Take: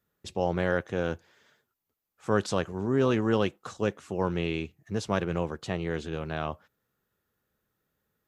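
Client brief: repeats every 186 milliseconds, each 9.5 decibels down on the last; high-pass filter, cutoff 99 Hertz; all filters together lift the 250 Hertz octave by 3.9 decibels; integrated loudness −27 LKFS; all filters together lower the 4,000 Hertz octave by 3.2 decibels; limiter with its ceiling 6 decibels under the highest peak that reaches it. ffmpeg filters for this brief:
ffmpeg -i in.wav -af "highpass=99,equalizer=frequency=250:width_type=o:gain=5.5,equalizer=frequency=4000:width_type=o:gain=-4.5,alimiter=limit=-16dB:level=0:latency=1,aecho=1:1:186|372|558|744:0.335|0.111|0.0365|0.012,volume=2dB" out.wav

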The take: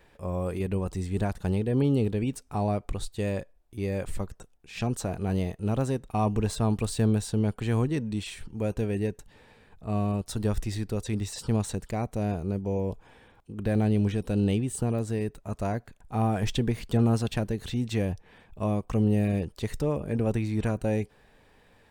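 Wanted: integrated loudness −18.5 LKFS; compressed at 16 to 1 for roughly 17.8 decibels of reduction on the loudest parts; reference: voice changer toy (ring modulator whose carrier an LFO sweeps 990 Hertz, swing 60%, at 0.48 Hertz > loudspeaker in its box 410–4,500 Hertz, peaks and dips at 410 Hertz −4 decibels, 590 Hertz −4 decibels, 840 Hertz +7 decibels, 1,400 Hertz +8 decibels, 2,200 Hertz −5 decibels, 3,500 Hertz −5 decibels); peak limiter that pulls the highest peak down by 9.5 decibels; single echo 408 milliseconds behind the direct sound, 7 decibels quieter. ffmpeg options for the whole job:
ffmpeg -i in.wav -af "acompressor=threshold=-37dB:ratio=16,alimiter=level_in=12dB:limit=-24dB:level=0:latency=1,volume=-12dB,aecho=1:1:408:0.447,aeval=exprs='val(0)*sin(2*PI*990*n/s+990*0.6/0.48*sin(2*PI*0.48*n/s))':channel_layout=same,highpass=410,equalizer=frequency=410:width_type=q:width=4:gain=-4,equalizer=frequency=590:width_type=q:width=4:gain=-4,equalizer=frequency=840:width_type=q:width=4:gain=7,equalizer=frequency=1400:width_type=q:width=4:gain=8,equalizer=frequency=2200:width_type=q:width=4:gain=-5,equalizer=frequency=3500:width_type=q:width=4:gain=-5,lowpass=frequency=4500:width=0.5412,lowpass=frequency=4500:width=1.3066,volume=25.5dB" out.wav

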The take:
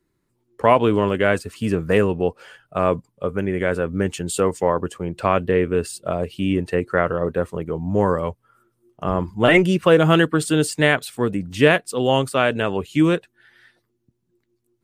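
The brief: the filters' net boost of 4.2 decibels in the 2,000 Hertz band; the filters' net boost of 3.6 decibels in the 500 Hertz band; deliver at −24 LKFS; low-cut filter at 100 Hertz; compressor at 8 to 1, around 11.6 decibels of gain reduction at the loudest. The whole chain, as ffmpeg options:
ffmpeg -i in.wav -af "highpass=100,equalizer=frequency=500:width_type=o:gain=4,equalizer=frequency=2000:width_type=o:gain=5,acompressor=threshold=-18dB:ratio=8,volume=0.5dB" out.wav

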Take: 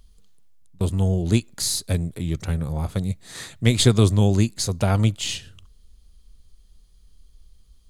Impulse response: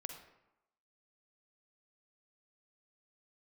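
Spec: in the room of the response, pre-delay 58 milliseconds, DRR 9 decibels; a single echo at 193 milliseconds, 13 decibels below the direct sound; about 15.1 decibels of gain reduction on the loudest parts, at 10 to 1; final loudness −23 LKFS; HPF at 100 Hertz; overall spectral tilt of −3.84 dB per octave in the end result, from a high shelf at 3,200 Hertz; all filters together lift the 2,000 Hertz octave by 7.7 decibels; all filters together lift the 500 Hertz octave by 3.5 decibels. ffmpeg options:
-filter_complex "[0:a]highpass=100,equalizer=frequency=500:width_type=o:gain=4,equalizer=frequency=2000:width_type=o:gain=7,highshelf=frequency=3200:gain=6,acompressor=threshold=-25dB:ratio=10,aecho=1:1:193:0.224,asplit=2[link_01][link_02];[1:a]atrim=start_sample=2205,adelay=58[link_03];[link_02][link_03]afir=irnorm=-1:irlink=0,volume=-6.5dB[link_04];[link_01][link_04]amix=inputs=2:normalize=0,volume=6.5dB"

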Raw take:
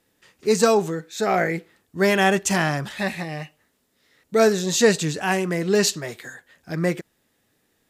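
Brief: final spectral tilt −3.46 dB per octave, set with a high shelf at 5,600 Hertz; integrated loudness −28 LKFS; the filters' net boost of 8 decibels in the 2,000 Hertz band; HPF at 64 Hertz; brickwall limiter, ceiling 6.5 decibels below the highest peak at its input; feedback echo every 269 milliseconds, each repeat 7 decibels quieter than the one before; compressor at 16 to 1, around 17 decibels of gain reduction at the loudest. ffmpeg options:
ffmpeg -i in.wav -af "highpass=64,equalizer=frequency=2000:width_type=o:gain=9,highshelf=frequency=5600:gain=5,acompressor=threshold=-26dB:ratio=16,alimiter=limit=-20.5dB:level=0:latency=1,aecho=1:1:269|538|807|1076|1345:0.447|0.201|0.0905|0.0407|0.0183,volume=3.5dB" out.wav

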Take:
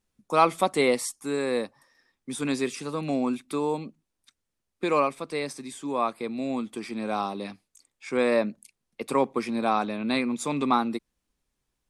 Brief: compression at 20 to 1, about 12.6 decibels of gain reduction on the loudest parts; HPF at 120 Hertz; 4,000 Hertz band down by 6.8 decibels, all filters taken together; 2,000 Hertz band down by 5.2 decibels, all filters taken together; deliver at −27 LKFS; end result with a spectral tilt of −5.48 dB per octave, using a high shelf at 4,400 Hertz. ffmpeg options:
ffmpeg -i in.wav -af "highpass=120,equalizer=frequency=2000:width_type=o:gain=-4,equalizer=frequency=4000:width_type=o:gain=-3.5,highshelf=frequency=4400:gain=-6.5,acompressor=threshold=-29dB:ratio=20,volume=8.5dB" out.wav

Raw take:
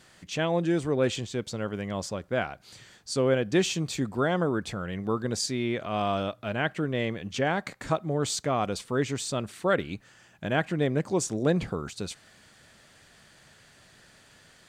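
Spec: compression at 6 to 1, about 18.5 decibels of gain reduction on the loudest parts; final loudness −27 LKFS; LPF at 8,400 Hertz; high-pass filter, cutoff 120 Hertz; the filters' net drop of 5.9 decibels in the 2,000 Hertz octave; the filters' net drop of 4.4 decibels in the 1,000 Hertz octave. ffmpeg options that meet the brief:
ffmpeg -i in.wav -af "highpass=120,lowpass=8400,equalizer=frequency=1000:width_type=o:gain=-5,equalizer=frequency=2000:width_type=o:gain=-6,acompressor=threshold=-41dB:ratio=6,volume=18dB" out.wav

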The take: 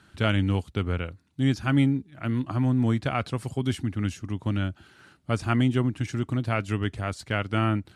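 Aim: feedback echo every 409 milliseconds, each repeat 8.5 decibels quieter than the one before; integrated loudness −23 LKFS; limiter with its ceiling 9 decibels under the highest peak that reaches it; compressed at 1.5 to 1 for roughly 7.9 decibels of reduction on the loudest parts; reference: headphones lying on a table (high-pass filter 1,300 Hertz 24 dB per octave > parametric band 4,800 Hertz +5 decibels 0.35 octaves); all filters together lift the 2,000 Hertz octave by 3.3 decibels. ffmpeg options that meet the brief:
ffmpeg -i in.wav -af "equalizer=frequency=2000:width_type=o:gain=5,acompressor=threshold=-40dB:ratio=1.5,alimiter=limit=-23dB:level=0:latency=1,highpass=frequency=1300:width=0.5412,highpass=frequency=1300:width=1.3066,equalizer=frequency=4800:width_type=o:width=0.35:gain=5,aecho=1:1:409|818|1227|1636:0.376|0.143|0.0543|0.0206,volume=21dB" out.wav

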